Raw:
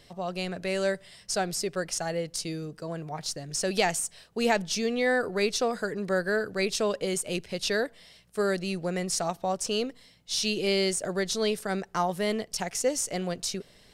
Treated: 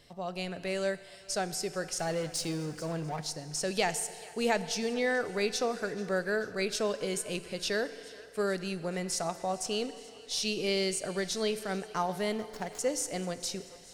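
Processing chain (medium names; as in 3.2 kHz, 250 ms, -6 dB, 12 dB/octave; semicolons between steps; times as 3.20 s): 12.34–12.79 s: median filter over 15 samples; thinning echo 436 ms, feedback 70%, high-pass 470 Hz, level -21 dB; 1.99–3.21 s: power-law waveshaper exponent 0.7; FDN reverb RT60 2.4 s, low-frequency decay 0.7×, high-frequency decay 0.95×, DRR 12.5 dB; trim -4 dB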